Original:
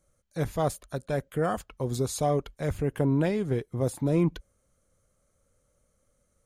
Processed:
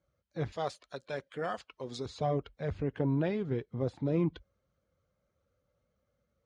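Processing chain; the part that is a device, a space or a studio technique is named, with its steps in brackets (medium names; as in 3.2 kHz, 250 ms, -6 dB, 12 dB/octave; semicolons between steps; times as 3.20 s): high-pass 51 Hz 24 dB/octave; clip after many re-uploads (low-pass 4.6 kHz 24 dB/octave; coarse spectral quantiser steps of 15 dB); 0.52–2.06 s: RIAA curve recording; trim -5 dB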